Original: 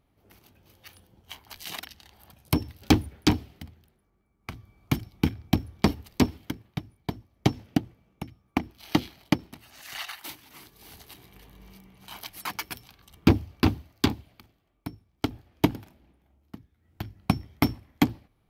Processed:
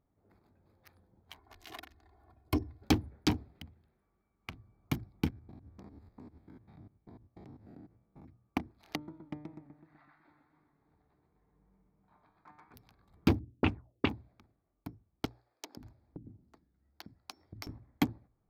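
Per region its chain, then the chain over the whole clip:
0:01.38–0:02.84: high-shelf EQ 3,000 Hz −8.5 dB + comb filter 2.8 ms, depth 85%
0:03.55–0:04.56: parametric band 2,900 Hz +10 dB 0.53 octaves + one half of a high-frequency compander encoder only
0:05.30–0:08.25: spectrum averaged block by block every 100 ms + downward compressor 8 to 1, threshold −40 dBFS
0:08.95–0:12.74: high-frequency loss of the air 380 metres + tuned comb filter 150 Hz, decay 0.72 s, mix 80% + feedback echo with a swinging delay time 125 ms, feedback 57%, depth 134 cents, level −5.5 dB
0:13.39–0:14.09: mu-law and A-law mismatch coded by A + envelope-controlled low-pass 240–2,700 Hz up, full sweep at −19.5 dBFS
0:15.25–0:17.67: parametric band 5,200 Hz +13 dB 0.94 octaves + multiband delay without the direct sound highs, lows 520 ms, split 380 Hz + downward compressor, threshold −34 dBFS
whole clip: adaptive Wiener filter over 15 samples; mains-hum notches 60/120 Hz; level −7.5 dB

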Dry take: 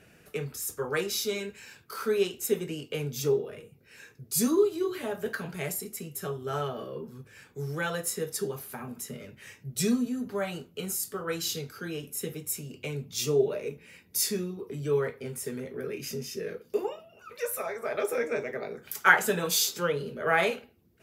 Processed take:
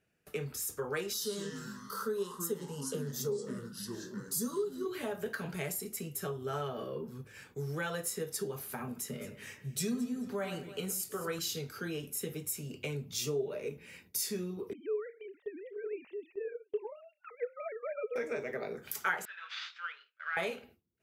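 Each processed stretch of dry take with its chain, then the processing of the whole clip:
0:01.13–0:04.86: delay with pitch and tempo change per echo 83 ms, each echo −4 semitones, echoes 3, each echo −6 dB + phaser with its sweep stopped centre 470 Hz, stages 8
0:08.99–0:11.39: high-pass filter 63 Hz + delay that swaps between a low-pass and a high-pass 107 ms, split 2,000 Hz, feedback 50%, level −10 dB
0:14.73–0:18.16: three sine waves on the formant tracks + Chebyshev high-pass filter 190 Hz + low-shelf EQ 270 Hz −7.5 dB
0:19.25–0:20.37: variable-slope delta modulation 64 kbit/s + elliptic band-pass filter 1,400–6,400 Hz, stop band 80 dB + high-frequency loss of the air 430 metres
whole clip: noise gate with hold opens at −44 dBFS; downward compressor 2.5 to 1, threshold −35 dBFS

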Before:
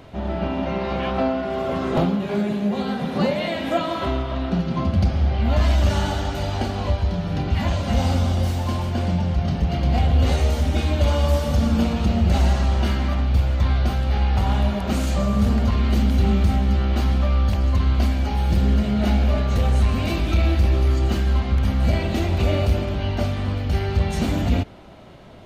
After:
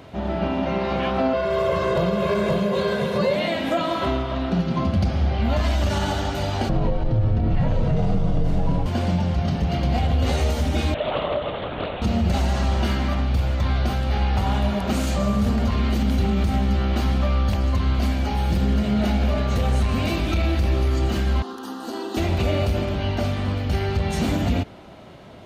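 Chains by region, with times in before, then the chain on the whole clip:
0:01.33–0:03.36: comb filter 1.9 ms, depth 91% + single-tap delay 528 ms −4.5 dB
0:06.69–0:08.86: spectral tilt −4.5 dB per octave + frequency shifter −68 Hz
0:10.94–0:12.02: high-pass filter 330 Hz 24 dB per octave + linear-prediction vocoder at 8 kHz whisper + highs frequency-modulated by the lows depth 0.16 ms
0:21.42–0:22.17: high-pass filter 240 Hz 24 dB per octave + phaser with its sweep stopped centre 600 Hz, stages 6
whole clip: high-pass filter 74 Hz 6 dB per octave; brickwall limiter −14 dBFS; level +1.5 dB

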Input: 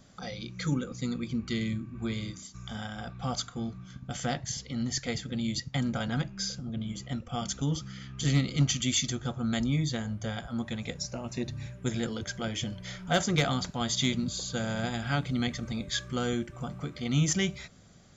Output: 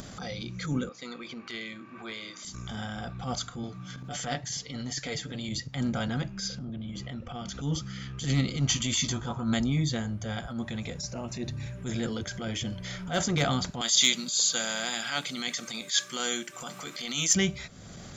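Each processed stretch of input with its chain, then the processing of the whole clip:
0:00.89–0:02.45: high-pass filter 610 Hz + high-frequency loss of the air 130 metres
0:03.63–0:05.49: low-shelf EQ 150 Hz −11 dB + comb filter 6.8 ms, depth 52%
0:06.48–0:07.61: low-pass filter 4,500 Hz + downward compressor 5 to 1, threshold −36 dBFS
0:08.69–0:09.54: parametric band 980 Hz +14.5 dB 0.33 octaves + double-tracking delay 18 ms −7 dB
0:13.81–0:17.35: high-pass filter 150 Hz 24 dB per octave + spectral tilt +4.5 dB per octave
whole clip: transient designer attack −11 dB, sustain +1 dB; upward compression, threshold −34 dBFS; level +2 dB

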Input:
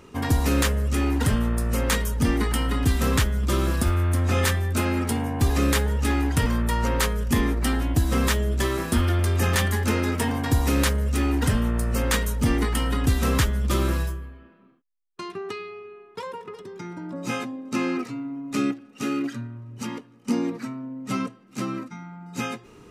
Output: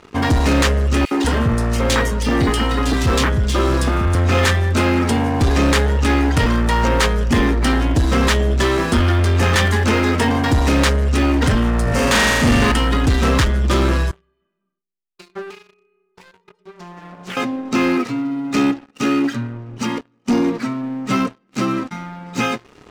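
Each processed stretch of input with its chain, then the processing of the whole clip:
0:01.05–0:04.15: high-pass filter 58 Hz + three-band delay without the direct sound highs, mids, lows 60/190 ms, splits 200/2,300 Hz
0:11.83–0:12.72: double-tracking delay 24 ms −11 dB + flutter between parallel walls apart 7.1 metres, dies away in 1.5 s
0:14.11–0:17.37: stiff-string resonator 180 Hz, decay 0.25 s, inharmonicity 0.03 + delay with a low-pass on its return 69 ms, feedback 67%, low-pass 720 Hz, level −21.5 dB + highs frequency-modulated by the lows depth 0.55 ms
whole clip: low-pass filter 6,000 Hz 12 dB per octave; bass and treble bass −3 dB, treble 0 dB; leveller curve on the samples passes 3

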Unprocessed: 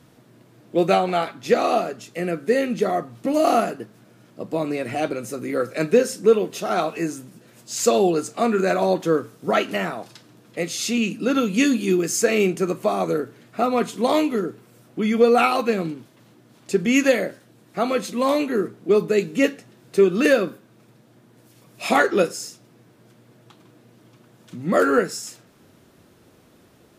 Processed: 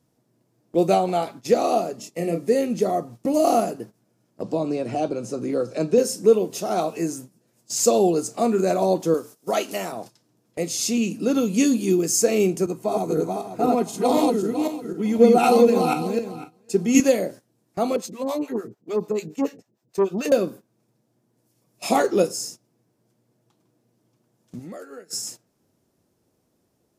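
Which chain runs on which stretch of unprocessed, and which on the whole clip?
0:01.95–0:02.48: Butterworth band-reject 1,500 Hz, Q 4.2 + double-tracking delay 30 ms −5 dB
0:04.42–0:05.98: low-pass filter 5,600 Hz + parametric band 2,000 Hz −8 dB 0.42 octaves + multiband upward and downward compressor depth 40%
0:09.14–0:09.92: high-pass filter 430 Hz 6 dB per octave + high-shelf EQ 3,700 Hz +6.5 dB
0:12.66–0:17.00: feedback delay that plays each chunk backwards 252 ms, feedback 43%, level −0.5 dB + notch comb filter 570 Hz + multiband upward and downward expander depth 40%
0:17.96–0:20.32: parametric band 10,000 Hz −12.5 dB 0.2 octaves + two-band tremolo in antiphase 6.8 Hz, depth 100%, crossover 590 Hz + saturating transformer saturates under 650 Hz
0:24.59–0:25.13: low-shelf EQ 320 Hz −9 dB + notch filter 1,000 Hz, Q 5.6 + downward compressor 8 to 1, threshold −34 dBFS
whole clip: drawn EQ curve 880 Hz 0 dB, 1,300 Hz −6 dB, 3,700 Hz −5 dB, 5,300 Hz +3 dB; noise gate −38 dBFS, range −15 dB; dynamic equaliser 1,700 Hz, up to −6 dB, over −41 dBFS, Q 1.8

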